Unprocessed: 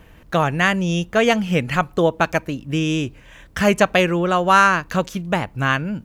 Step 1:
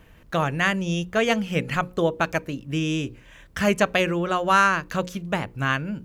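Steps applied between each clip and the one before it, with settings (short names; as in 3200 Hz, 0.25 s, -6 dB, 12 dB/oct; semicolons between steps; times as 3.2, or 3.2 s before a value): bell 800 Hz -2.5 dB 0.63 oct; notches 60/120/180/240/300/360/420/480/540 Hz; gain -4 dB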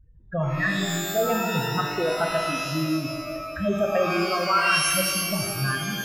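spectral contrast raised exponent 3.5; shimmer reverb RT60 1.6 s, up +12 st, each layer -2 dB, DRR 2 dB; gain -3 dB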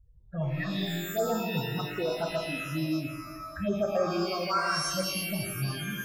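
envelope phaser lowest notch 260 Hz, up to 3000 Hz, full sweep at -18 dBFS; gain -4 dB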